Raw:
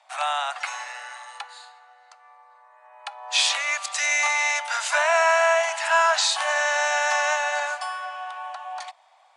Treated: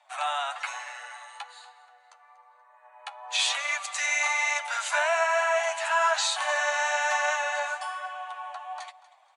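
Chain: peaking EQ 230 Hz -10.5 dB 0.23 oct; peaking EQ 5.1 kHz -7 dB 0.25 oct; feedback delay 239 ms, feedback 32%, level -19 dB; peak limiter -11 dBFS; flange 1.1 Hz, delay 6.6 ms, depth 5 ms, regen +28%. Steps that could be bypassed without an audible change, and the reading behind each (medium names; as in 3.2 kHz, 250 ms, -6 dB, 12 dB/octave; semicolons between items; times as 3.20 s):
peaking EQ 230 Hz: input has nothing below 540 Hz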